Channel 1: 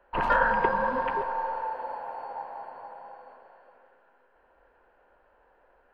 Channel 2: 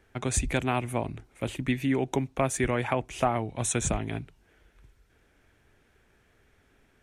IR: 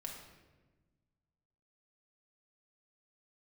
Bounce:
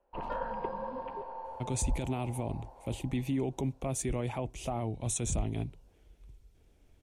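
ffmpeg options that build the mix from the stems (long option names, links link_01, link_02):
-filter_complex "[0:a]highshelf=frequency=4100:gain=-7,volume=-8dB[link_01];[1:a]lowshelf=frequency=73:gain=10,alimiter=limit=-20.5dB:level=0:latency=1:release=11,adelay=1450,volume=-2.5dB[link_02];[link_01][link_02]amix=inputs=2:normalize=0,equalizer=frequency=1600:width=1.5:gain=-14.5"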